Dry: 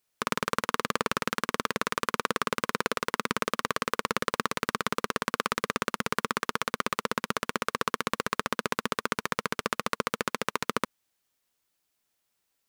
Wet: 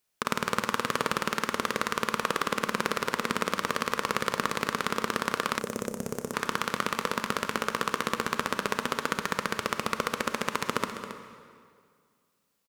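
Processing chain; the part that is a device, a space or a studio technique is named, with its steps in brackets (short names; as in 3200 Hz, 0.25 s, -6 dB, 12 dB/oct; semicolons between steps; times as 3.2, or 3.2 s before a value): saturated reverb return (on a send at -6 dB: reverb RT60 2.1 s, pre-delay 30 ms + soft clip -28 dBFS, distortion -14 dB); 5.59–6.34 on the sum: band shelf 2100 Hz -16 dB 2.6 oct; echo 0.272 s -12 dB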